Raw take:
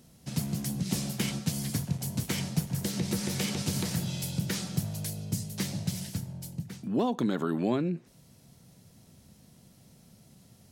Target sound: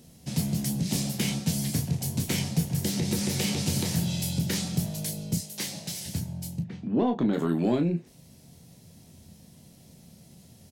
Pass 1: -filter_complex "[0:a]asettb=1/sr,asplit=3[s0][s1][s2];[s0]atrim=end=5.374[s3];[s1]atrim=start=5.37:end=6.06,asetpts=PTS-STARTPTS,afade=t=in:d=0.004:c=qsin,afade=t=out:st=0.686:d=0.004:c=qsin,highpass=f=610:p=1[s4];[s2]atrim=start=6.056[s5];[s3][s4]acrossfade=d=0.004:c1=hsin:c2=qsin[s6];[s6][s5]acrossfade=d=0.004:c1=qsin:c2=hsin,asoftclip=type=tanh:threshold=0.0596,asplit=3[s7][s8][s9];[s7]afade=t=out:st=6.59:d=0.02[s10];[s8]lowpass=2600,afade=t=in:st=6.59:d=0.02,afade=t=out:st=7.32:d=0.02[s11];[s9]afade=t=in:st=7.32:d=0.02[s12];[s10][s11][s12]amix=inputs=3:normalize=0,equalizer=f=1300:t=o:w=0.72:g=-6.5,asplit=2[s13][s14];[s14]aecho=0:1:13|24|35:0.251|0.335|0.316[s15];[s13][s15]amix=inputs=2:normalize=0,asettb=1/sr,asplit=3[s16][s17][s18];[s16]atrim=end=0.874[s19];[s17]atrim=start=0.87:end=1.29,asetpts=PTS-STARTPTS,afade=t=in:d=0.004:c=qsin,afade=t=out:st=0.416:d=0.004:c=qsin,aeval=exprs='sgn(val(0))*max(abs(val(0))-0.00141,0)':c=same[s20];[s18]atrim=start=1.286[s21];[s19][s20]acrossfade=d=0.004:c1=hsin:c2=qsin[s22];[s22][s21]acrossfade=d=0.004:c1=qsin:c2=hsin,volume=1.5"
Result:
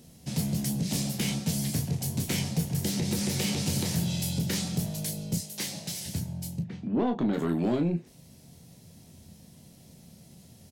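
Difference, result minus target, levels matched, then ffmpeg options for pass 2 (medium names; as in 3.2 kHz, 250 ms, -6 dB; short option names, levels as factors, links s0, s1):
saturation: distortion +8 dB
-filter_complex "[0:a]asettb=1/sr,asplit=3[s0][s1][s2];[s0]atrim=end=5.374[s3];[s1]atrim=start=5.37:end=6.06,asetpts=PTS-STARTPTS,afade=t=in:d=0.004:c=qsin,afade=t=out:st=0.686:d=0.004:c=qsin,highpass=f=610:p=1[s4];[s2]atrim=start=6.056[s5];[s3][s4]acrossfade=d=0.004:c1=hsin:c2=qsin[s6];[s6][s5]acrossfade=d=0.004:c1=qsin:c2=hsin,asoftclip=type=tanh:threshold=0.119,asplit=3[s7][s8][s9];[s7]afade=t=out:st=6.59:d=0.02[s10];[s8]lowpass=2600,afade=t=in:st=6.59:d=0.02,afade=t=out:st=7.32:d=0.02[s11];[s9]afade=t=in:st=7.32:d=0.02[s12];[s10][s11][s12]amix=inputs=3:normalize=0,equalizer=f=1300:t=o:w=0.72:g=-6.5,asplit=2[s13][s14];[s14]aecho=0:1:13|24|35:0.251|0.335|0.316[s15];[s13][s15]amix=inputs=2:normalize=0,asettb=1/sr,asplit=3[s16][s17][s18];[s16]atrim=end=0.874[s19];[s17]atrim=start=0.87:end=1.29,asetpts=PTS-STARTPTS,afade=t=in:d=0.004:c=qsin,afade=t=out:st=0.416:d=0.004:c=qsin,aeval=exprs='sgn(val(0))*max(abs(val(0))-0.00141,0)':c=same[s20];[s18]atrim=start=1.286[s21];[s19][s20]acrossfade=d=0.004:c1=hsin:c2=qsin[s22];[s22][s21]acrossfade=d=0.004:c1=qsin:c2=hsin,volume=1.5"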